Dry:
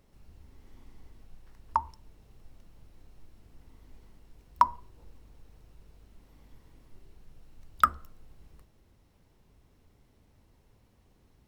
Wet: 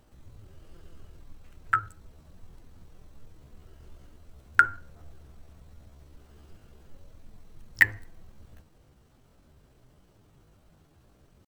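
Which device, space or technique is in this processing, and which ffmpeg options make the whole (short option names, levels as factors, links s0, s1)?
chipmunk voice: -af "asetrate=64194,aresample=44100,atempo=0.686977,volume=1.5"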